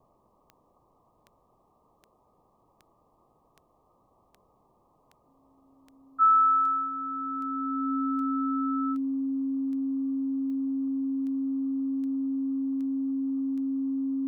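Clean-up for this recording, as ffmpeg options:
ffmpeg -i in.wav -af "adeclick=threshold=4,bandreject=frequency=270:width=30,afwtdn=0.002" out.wav

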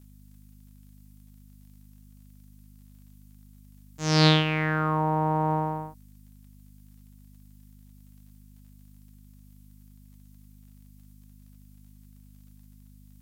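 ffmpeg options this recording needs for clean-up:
ffmpeg -i in.wav -af "adeclick=threshold=4,bandreject=frequency=50.7:width_type=h:width=4,bandreject=frequency=101.4:width_type=h:width=4,bandreject=frequency=152.1:width_type=h:width=4,bandreject=frequency=202.8:width_type=h:width=4,bandreject=frequency=253.5:width_type=h:width=4,agate=range=-21dB:threshold=-44dB" out.wav

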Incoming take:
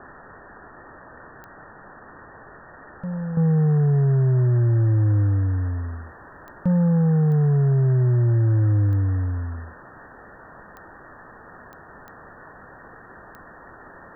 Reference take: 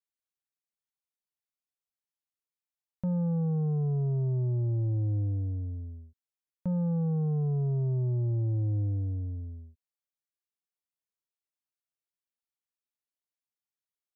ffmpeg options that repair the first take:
ffmpeg -i in.wav -af "adeclick=threshold=4,afwtdn=0.02,asetnsamples=nb_out_samples=441:pad=0,asendcmd='3.37 volume volume -10dB',volume=0dB" out.wav

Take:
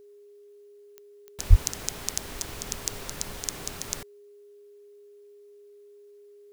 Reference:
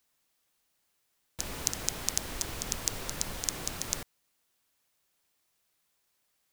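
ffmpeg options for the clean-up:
ffmpeg -i in.wav -filter_complex "[0:a]adeclick=threshold=4,bandreject=frequency=410:width=30,asplit=3[link_01][link_02][link_03];[link_01]afade=type=out:start_time=1.49:duration=0.02[link_04];[link_02]highpass=frequency=140:width=0.5412,highpass=frequency=140:width=1.3066,afade=type=in:start_time=1.49:duration=0.02,afade=type=out:start_time=1.61:duration=0.02[link_05];[link_03]afade=type=in:start_time=1.61:duration=0.02[link_06];[link_04][link_05][link_06]amix=inputs=3:normalize=0" out.wav

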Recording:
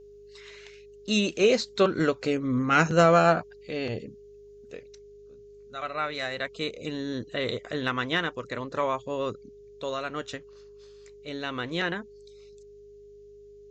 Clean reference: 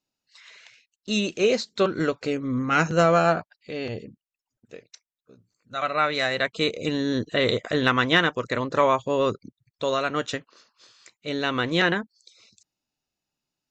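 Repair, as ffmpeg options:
ffmpeg -i in.wav -af "bandreject=frequency=51:width_type=h:width=4,bandreject=frequency=102:width_type=h:width=4,bandreject=frequency=153:width_type=h:width=4,bandreject=frequency=204:width_type=h:width=4,bandreject=frequency=410:width=30,agate=range=-21dB:threshold=-42dB,asetnsamples=nb_out_samples=441:pad=0,asendcmd='4.89 volume volume 7.5dB',volume=0dB" out.wav

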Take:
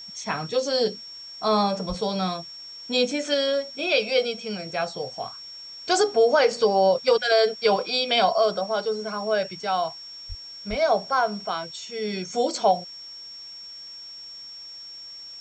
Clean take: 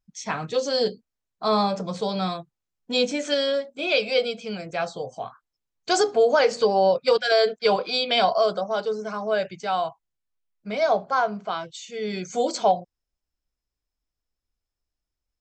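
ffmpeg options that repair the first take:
ffmpeg -i in.wav -filter_complex "[0:a]bandreject=frequency=5500:width=30,asplit=3[link_01][link_02][link_03];[link_01]afade=type=out:start_time=1.88:duration=0.02[link_04];[link_02]highpass=frequency=140:width=0.5412,highpass=frequency=140:width=1.3066,afade=type=in:start_time=1.88:duration=0.02,afade=type=out:start_time=2:duration=0.02[link_05];[link_03]afade=type=in:start_time=2:duration=0.02[link_06];[link_04][link_05][link_06]amix=inputs=3:normalize=0,asplit=3[link_07][link_08][link_09];[link_07]afade=type=out:start_time=10.28:duration=0.02[link_10];[link_08]highpass=frequency=140:width=0.5412,highpass=frequency=140:width=1.3066,afade=type=in:start_time=10.28:duration=0.02,afade=type=out:start_time=10.4:duration=0.02[link_11];[link_09]afade=type=in:start_time=10.4:duration=0.02[link_12];[link_10][link_11][link_12]amix=inputs=3:normalize=0,asplit=3[link_13][link_14][link_15];[link_13]afade=type=out:start_time=10.69:duration=0.02[link_16];[link_14]highpass=frequency=140:width=0.5412,highpass=frequency=140:width=1.3066,afade=type=in:start_time=10.69:duration=0.02,afade=type=out:start_time=10.81:duration=0.02[link_17];[link_15]afade=type=in:start_time=10.81:duration=0.02[link_18];[link_16][link_17][link_18]amix=inputs=3:normalize=0,agate=range=-21dB:threshold=-33dB" out.wav

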